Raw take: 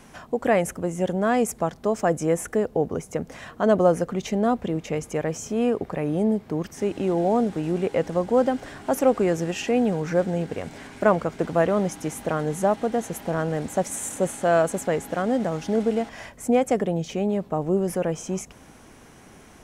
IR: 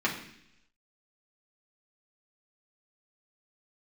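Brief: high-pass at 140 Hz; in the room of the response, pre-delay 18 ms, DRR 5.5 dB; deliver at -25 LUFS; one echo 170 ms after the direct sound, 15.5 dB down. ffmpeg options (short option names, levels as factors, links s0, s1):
-filter_complex "[0:a]highpass=140,aecho=1:1:170:0.168,asplit=2[s0][s1];[1:a]atrim=start_sample=2205,adelay=18[s2];[s1][s2]afir=irnorm=-1:irlink=0,volume=0.158[s3];[s0][s3]amix=inputs=2:normalize=0,volume=0.841"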